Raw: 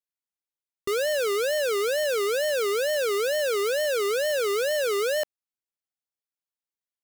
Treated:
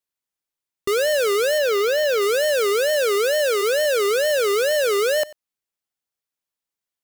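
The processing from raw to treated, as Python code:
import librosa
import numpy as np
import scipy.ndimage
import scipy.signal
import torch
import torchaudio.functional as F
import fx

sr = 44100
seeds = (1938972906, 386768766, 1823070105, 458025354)

y = fx.peak_eq(x, sr, hz=9300.0, db=-9.5, octaves=0.66, at=(1.58, 2.22))
y = fx.highpass(y, sr, hz=fx.line((2.9, 170.0), (3.61, 370.0)), slope=24, at=(2.9, 3.61), fade=0.02)
y = y + 10.0 ** (-20.5 / 20.0) * np.pad(y, (int(93 * sr / 1000.0), 0))[:len(y)]
y = y * librosa.db_to_amplitude(5.5)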